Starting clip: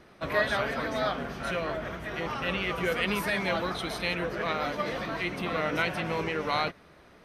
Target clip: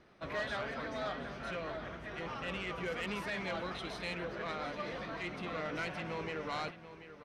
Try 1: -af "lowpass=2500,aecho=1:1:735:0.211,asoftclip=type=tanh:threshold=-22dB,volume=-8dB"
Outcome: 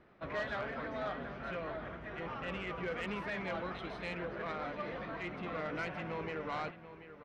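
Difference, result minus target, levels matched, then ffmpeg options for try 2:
8,000 Hz band −8.5 dB
-af "lowpass=6800,aecho=1:1:735:0.211,asoftclip=type=tanh:threshold=-22dB,volume=-8dB"

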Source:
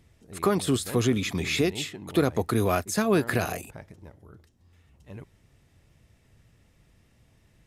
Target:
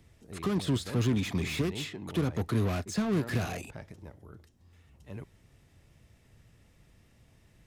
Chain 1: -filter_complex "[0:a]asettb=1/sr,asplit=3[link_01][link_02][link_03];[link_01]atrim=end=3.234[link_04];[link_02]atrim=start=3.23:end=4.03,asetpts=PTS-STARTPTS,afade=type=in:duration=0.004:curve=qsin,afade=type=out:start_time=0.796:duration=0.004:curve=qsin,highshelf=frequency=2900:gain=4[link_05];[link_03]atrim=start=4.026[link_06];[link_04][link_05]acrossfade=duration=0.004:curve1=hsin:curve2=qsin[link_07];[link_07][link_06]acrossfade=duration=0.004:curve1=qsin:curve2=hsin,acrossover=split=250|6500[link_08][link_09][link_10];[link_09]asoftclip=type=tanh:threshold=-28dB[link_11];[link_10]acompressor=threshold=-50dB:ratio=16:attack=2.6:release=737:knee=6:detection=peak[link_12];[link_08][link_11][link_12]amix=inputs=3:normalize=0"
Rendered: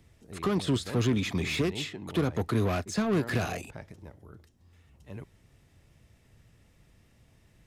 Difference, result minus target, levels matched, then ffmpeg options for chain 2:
soft clipping: distortion −4 dB
-filter_complex "[0:a]asettb=1/sr,asplit=3[link_01][link_02][link_03];[link_01]atrim=end=3.234[link_04];[link_02]atrim=start=3.23:end=4.03,asetpts=PTS-STARTPTS,afade=type=in:duration=0.004:curve=qsin,afade=type=out:start_time=0.796:duration=0.004:curve=qsin,highshelf=frequency=2900:gain=4[link_05];[link_03]atrim=start=4.026[link_06];[link_04][link_05]acrossfade=duration=0.004:curve1=hsin:curve2=qsin[link_07];[link_07][link_06]acrossfade=duration=0.004:curve1=qsin:curve2=hsin,acrossover=split=250|6500[link_08][link_09][link_10];[link_09]asoftclip=type=tanh:threshold=-34.5dB[link_11];[link_10]acompressor=threshold=-50dB:ratio=16:attack=2.6:release=737:knee=6:detection=peak[link_12];[link_08][link_11][link_12]amix=inputs=3:normalize=0"

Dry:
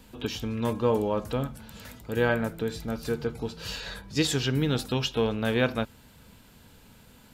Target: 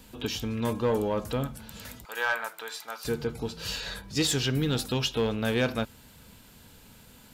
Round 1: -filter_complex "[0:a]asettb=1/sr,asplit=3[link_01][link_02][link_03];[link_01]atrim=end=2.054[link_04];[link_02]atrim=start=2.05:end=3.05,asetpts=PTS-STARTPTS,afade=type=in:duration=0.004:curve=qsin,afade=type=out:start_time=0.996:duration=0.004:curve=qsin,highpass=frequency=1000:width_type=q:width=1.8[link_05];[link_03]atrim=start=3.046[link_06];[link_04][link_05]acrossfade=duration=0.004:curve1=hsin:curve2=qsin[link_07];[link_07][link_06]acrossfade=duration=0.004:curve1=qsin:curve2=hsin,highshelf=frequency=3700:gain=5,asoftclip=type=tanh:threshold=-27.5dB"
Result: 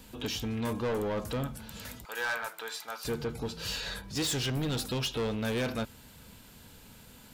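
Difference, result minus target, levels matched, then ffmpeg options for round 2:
soft clipping: distortion +10 dB
-filter_complex "[0:a]asettb=1/sr,asplit=3[link_01][link_02][link_03];[link_01]atrim=end=2.054[link_04];[link_02]atrim=start=2.05:end=3.05,asetpts=PTS-STARTPTS,afade=type=in:duration=0.004:curve=qsin,afade=type=out:start_time=0.996:duration=0.004:curve=qsin,highpass=frequency=1000:width_type=q:width=1.8[link_05];[link_03]atrim=start=3.046[link_06];[link_04][link_05]acrossfade=duration=0.004:curve1=hsin:curve2=qsin[link_07];[link_07][link_06]acrossfade=duration=0.004:curve1=qsin:curve2=hsin,highshelf=frequency=3700:gain=5,asoftclip=type=tanh:threshold=-17.5dB"

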